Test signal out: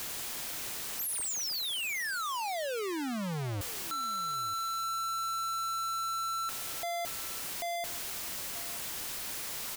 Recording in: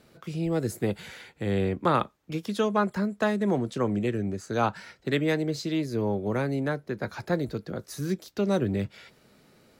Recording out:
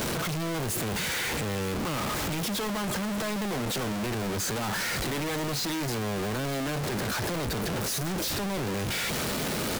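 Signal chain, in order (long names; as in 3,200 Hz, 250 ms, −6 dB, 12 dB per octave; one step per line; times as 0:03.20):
sign of each sample alone
single-tap delay 927 ms −18 dB
level −1.5 dB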